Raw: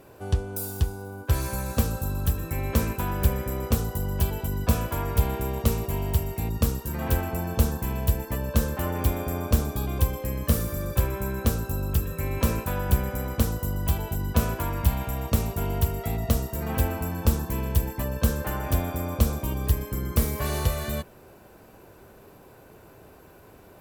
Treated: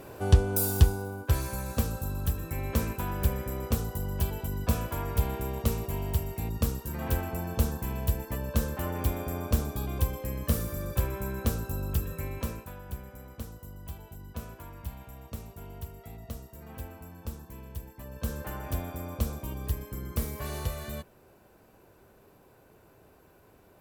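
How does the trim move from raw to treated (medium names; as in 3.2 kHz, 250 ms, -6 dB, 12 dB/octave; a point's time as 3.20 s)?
0.86 s +5 dB
1.46 s -4.5 dB
12.14 s -4.5 dB
12.80 s -16.5 dB
17.96 s -16.5 dB
18.36 s -8 dB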